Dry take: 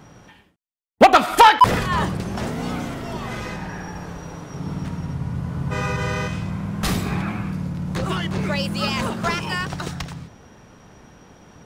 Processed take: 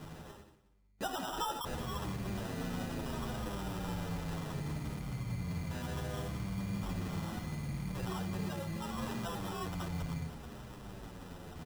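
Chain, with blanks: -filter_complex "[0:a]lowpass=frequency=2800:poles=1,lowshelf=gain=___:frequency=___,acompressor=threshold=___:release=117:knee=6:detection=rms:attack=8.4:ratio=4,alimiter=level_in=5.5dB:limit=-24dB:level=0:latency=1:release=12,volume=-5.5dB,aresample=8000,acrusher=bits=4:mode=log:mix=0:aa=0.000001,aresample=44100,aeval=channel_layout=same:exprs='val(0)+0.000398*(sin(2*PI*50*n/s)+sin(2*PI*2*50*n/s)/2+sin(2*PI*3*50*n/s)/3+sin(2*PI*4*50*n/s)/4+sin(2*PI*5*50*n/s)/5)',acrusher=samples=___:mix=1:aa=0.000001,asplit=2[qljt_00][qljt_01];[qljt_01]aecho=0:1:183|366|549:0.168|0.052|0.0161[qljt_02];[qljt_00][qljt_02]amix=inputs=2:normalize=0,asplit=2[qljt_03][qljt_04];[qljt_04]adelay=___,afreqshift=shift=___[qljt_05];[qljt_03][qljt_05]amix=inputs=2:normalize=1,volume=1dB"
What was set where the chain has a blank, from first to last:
7.5, 66, -33dB, 20, 8.9, -0.7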